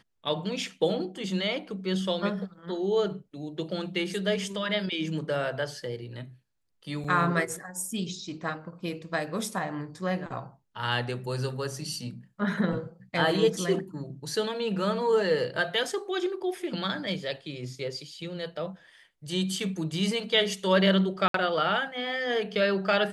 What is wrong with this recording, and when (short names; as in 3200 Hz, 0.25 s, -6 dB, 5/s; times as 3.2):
7.04–7.05 gap 5.1 ms
21.28–21.34 gap 63 ms